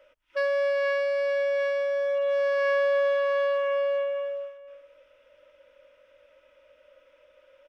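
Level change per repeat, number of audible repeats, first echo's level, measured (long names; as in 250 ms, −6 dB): repeats not evenly spaced, 1, −17.5 dB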